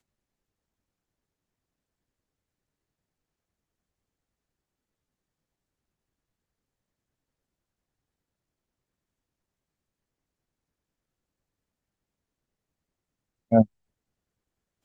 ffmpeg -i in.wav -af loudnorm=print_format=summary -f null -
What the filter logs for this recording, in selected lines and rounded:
Input Integrated:    -23.4 LUFS
Input True Peak:      -5.5 dBTP
Input LRA:             0.0 LU
Input Threshold:     -33.4 LUFS